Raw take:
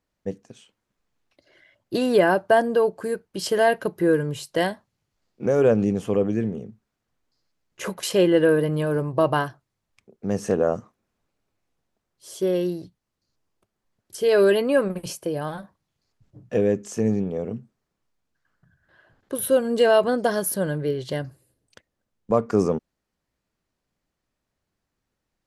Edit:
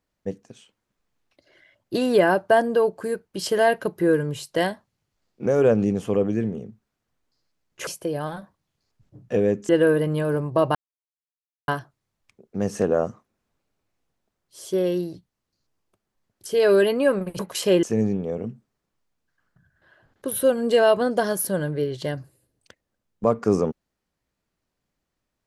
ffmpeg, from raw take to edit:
-filter_complex "[0:a]asplit=6[s0][s1][s2][s3][s4][s5];[s0]atrim=end=7.872[s6];[s1]atrim=start=15.078:end=16.902[s7];[s2]atrim=start=8.308:end=9.37,asetpts=PTS-STARTPTS,afade=t=out:st=1.058:d=0.004:c=hsin,apad=pad_dur=0.93[s8];[s3]atrim=start=9.37:end=15.082,asetpts=PTS-STARTPTS,afade=t=in:d=0.004:c=hsin[s9];[s4]atrim=start=7.868:end=8.312[s10];[s5]atrim=start=16.898[s11];[s6][s7]acrossfade=d=0.004:c1=hsin:c2=hsin[s12];[s8][s9]concat=n=2:v=0:a=1[s13];[s12][s13]acrossfade=d=0.004:c1=hsin:c2=hsin[s14];[s14][s10]acrossfade=d=0.004:c1=hsin:c2=hsin[s15];[s15][s11]acrossfade=d=0.004:c1=hsin:c2=hsin"

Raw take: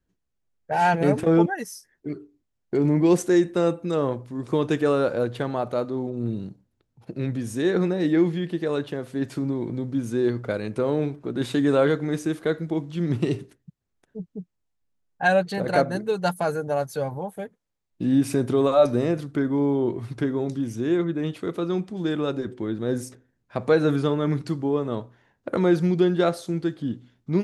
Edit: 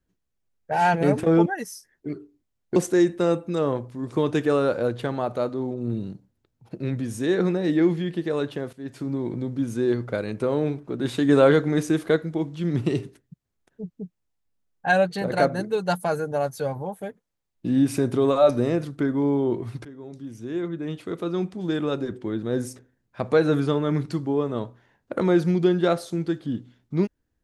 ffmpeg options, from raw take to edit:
-filter_complex "[0:a]asplit=6[s0][s1][s2][s3][s4][s5];[s0]atrim=end=2.762[s6];[s1]atrim=start=3.118:end=9.09,asetpts=PTS-STARTPTS,afade=t=out:st=5.968:d=0.004:c=hsin:silence=0.188365[s7];[s2]atrim=start=9.09:end=11.652,asetpts=PTS-STARTPTS,afade=t=in:d=0.49:silence=0.188365[s8];[s3]atrim=start=11.648:end=12.522,asetpts=PTS-STARTPTS,volume=1.5[s9];[s4]atrim=start=12.518:end=20.21,asetpts=PTS-STARTPTS,afade=t=out:st=7.688:d=0.004:c=hsin:silence=0.1[s10];[s5]atrim=start=20.21,asetpts=PTS-STARTPTS,afade=t=in:d=1.65:silence=0.1[s11];[s7][s8]concat=n=2:v=0:a=1[s12];[s6][s12]acrossfade=d=0.004:c1=hsin:c2=hsin[s13];[s13][s9]acrossfade=d=0.004:c1=hsin:c2=hsin[s14];[s10][s11]concat=n=2:v=0:a=1[s15];[s14][s15]acrossfade=d=0.004:c1=hsin:c2=hsin"

